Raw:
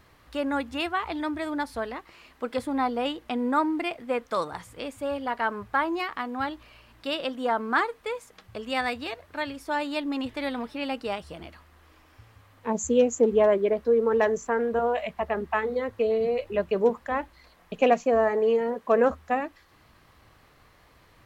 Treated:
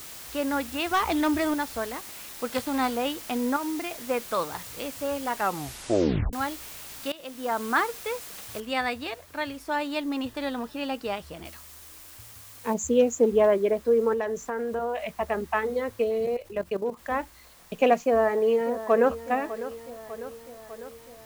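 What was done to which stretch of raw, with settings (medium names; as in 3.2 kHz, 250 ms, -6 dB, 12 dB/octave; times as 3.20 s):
0.91–1.54 s: waveshaping leveller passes 2
2.45–2.95 s: formants flattened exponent 0.6
3.56–3.97 s: compression, threshold -28 dBFS
5.34 s: tape stop 0.99 s
7.12–7.67 s: fade in, from -19.5 dB
8.60 s: noise floor step -42 dB -55 dB
10.27–10.95 s: band-stop 2.2 kHz, Q 5.6
11.45–12.74 s: treble shelf 3.3 kHz +8.5 dB
14.13–15.16 s: compression 2.5:1, threshold -27 dBFS
16.04–16.99 s: level held to a coarse grid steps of 13 dB
18.05–19.25 s: echo throw 600 ms, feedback 65%, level -14 dB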